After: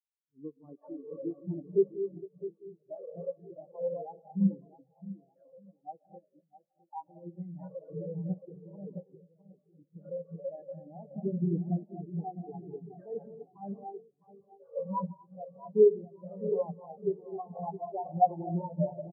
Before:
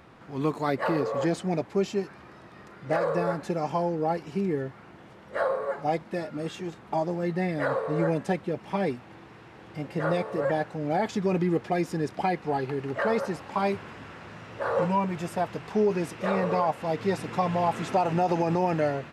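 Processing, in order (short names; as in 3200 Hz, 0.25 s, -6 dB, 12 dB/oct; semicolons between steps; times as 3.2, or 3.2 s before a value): 4.35–5.87 ten-band EQ 250 Hz +5 dB, 500 Hz -6 dB, 1000 Hz -7 dB; non-linear reverb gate 0.28 s rising, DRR 2 dB; in parallel at -1 dB: compressor, threshold -38 dBFS, peak gain reduction 18.5 dB; 6.41–7.09 on the sum: resonant low shelf 680 Hz -10 dB, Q 3; on a send: bouncing-ball echo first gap 0.66 s, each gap 0.85×, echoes 5; on the sum: spectral expander 4:1; gain -3.5 dB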